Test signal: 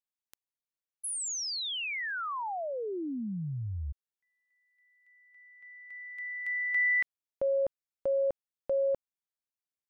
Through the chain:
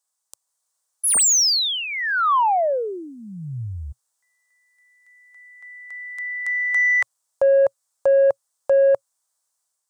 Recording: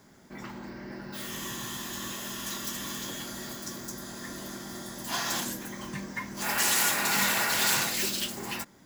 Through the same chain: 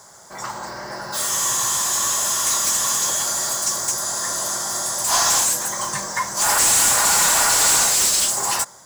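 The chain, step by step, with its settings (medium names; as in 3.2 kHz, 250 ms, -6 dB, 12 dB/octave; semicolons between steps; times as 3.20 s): FFT filter 120 Hz 0 dB, 260 Hz -18 dB, 550 Hz -3 dB, 1.1 kHz -1 dB, 2.5 kHz -15 dB, 8.3 kHz +12 dB, 13 kHz +1 dB; level rider gain up to 3.5 dB; overdrive pedal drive 24 dB, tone 4.2 kHz, clips at -4.5 dBFS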